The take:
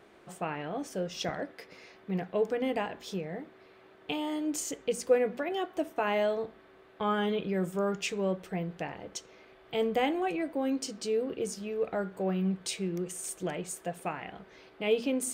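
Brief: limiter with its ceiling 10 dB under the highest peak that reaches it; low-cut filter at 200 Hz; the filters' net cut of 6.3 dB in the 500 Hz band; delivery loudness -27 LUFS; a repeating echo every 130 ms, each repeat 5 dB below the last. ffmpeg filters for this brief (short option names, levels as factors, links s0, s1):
-af "highpass=200,equalizer=f=500:t=o:g=-7.5,alimiter=level_in=1.33:limit=0.0631:level=0:latency=1,volume=0.75,aecho=1:1:130|260|390|520|650|780|910:0.562|0.315|0.176|0.0988|0.0553|0.031|0.0173,volume=2.99"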